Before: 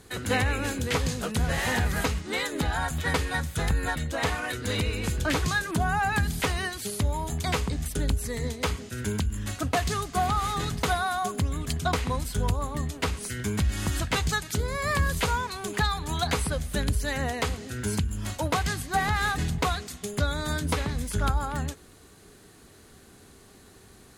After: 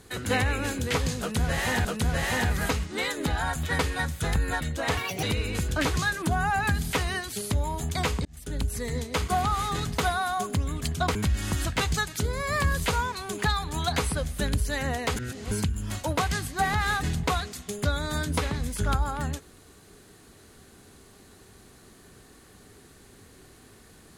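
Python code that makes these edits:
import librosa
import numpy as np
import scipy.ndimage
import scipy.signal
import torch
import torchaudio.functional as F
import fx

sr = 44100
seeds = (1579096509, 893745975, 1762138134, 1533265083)

y = fx.edit(x, sr, fx.repeat(start_s=1.2, length_s=0.65, count=2),
    fx.speed_span(start_s=4.32, length_s=0.4, speed=1.53),
    fx.fade_in_span(start_s=7.74, length_s=0.5),
    fx.cut(start_s=8.77, length_s=1.36),
    fx.cut(start_s=12.0, length_s=1.5),
    fx.reverse_span(start_s=17.51, length_s=0.35), tone=tone)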